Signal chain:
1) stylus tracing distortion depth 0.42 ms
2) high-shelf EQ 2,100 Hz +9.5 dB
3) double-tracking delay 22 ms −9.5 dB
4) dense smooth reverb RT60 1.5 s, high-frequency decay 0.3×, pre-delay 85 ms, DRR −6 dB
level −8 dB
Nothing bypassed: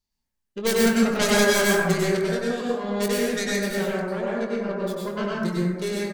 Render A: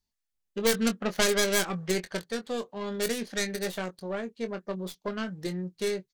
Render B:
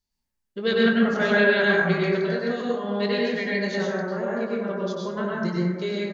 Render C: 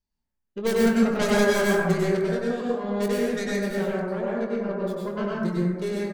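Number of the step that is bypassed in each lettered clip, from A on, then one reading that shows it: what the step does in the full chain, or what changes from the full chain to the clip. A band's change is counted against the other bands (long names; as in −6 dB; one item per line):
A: 4, change in crest factor +4.0 dB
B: 1, 2 kHz band +3.0 dB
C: 2, 8 kHz band −7.5 dB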